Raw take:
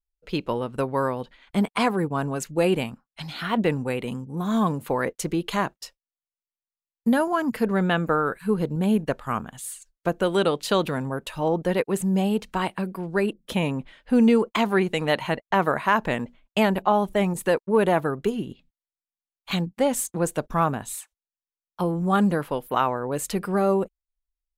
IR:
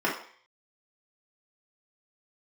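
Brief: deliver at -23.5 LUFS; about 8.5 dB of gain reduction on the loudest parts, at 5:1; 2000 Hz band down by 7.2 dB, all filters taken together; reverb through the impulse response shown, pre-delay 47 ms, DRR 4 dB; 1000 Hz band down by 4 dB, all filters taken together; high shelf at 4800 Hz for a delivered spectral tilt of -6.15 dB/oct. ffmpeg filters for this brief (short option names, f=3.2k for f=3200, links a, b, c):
-filter_complex "[0:a]equalizer=f=1k:t=o:g=-3,equalizer=f=2k:t=o:g=-8,highshelf=f=4.8k:g=-3,acompressor=threshold=-24dB:ratio=5,asplit=2[a][b];[1:a]atrim=start_sample=2205,adelay=47[c];[b][c]afir=irnorm=-1:irlink=0,volume=-17dB[d];[a][d]amix=inputs=2:normalize=0,volume=5dB"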